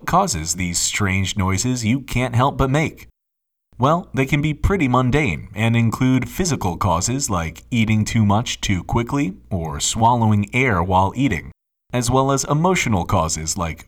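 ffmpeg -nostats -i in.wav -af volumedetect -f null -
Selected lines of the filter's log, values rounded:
mean_volume: -19.1 dB
max_volume: -3.4 dB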